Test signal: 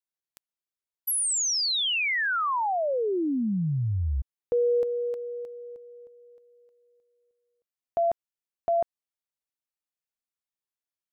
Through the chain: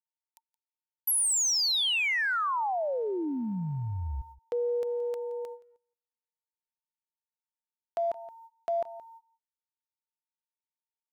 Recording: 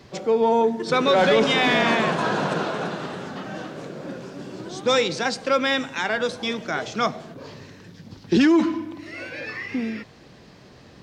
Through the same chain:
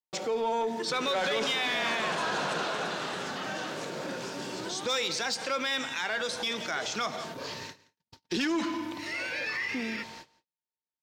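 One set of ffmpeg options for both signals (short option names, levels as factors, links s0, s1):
-filter_complex "[0:a]lowshelf=f=370:g=-10.5,aeval=exprs='val(0)+0.00282*sin(2*PI*910*n/s)':c=same,highshelf=f=2500:g=7,agate=range=0.00112:threshold=0.01:ratio=16:release=381:detection=rms,aecho=1:1:172:0.0794,asplit=2[s0][s1];[s1]asoftclip=type=hard:threshold=0.075,volume=0.473[s2];[s0][s2]amix=inputs=2:normalize=0,acompressor=threshold=0.0355:ratio=2.5:attack=0.12:release=132:knee=1:detection=peak"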